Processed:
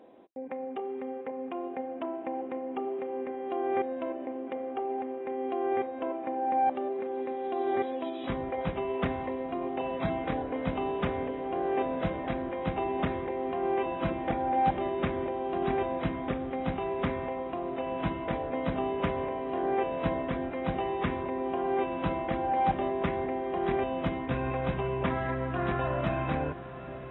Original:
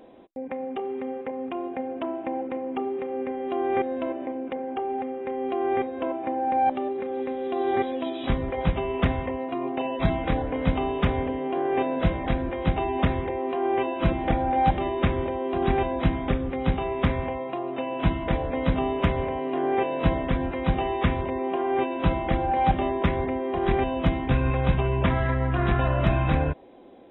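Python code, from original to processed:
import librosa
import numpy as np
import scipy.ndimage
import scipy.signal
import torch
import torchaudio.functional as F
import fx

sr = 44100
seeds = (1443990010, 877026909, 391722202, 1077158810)

y = fx.highpass(x, sr, hz=250.0, slope=6)
y = fx.high_shelf(y, sr, hz=2800.0, db=-8.5)
y = fx.echo_diffused(y, sr, ms=946, feedback_pct=68, wet_db=-14.5)
y = y * librosa.db_to_amplitude(-3.0)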